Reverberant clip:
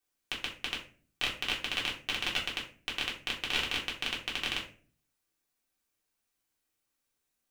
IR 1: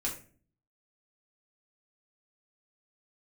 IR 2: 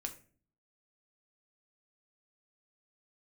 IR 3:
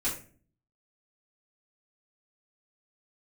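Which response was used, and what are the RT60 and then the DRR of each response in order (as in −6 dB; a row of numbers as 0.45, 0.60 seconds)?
1; 0.40, 0.40, 0.40 seconds; −4.5, 4.0, −11.5 decibels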